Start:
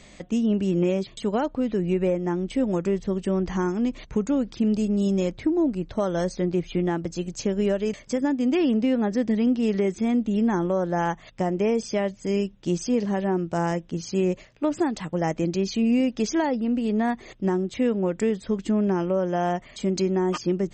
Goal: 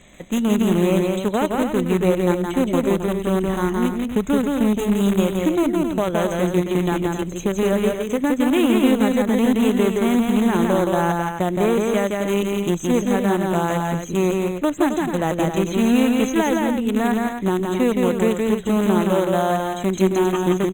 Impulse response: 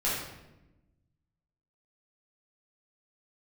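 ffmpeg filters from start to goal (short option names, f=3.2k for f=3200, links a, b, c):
-filter_complex "[0:a]asplit=2[a][b];[b]acrusher=bits=4:dc=4:mix=0:aa=0.000001,volume=-7dB[c];[a][c]amix=inputs=2:normalize=0,asuperstop=centerf=5000:order=20:qfactor=2.4,aecho=1:1:169.1|268.2:0.708|0.398" -ar 48000 -c:a libopus -b:a 48k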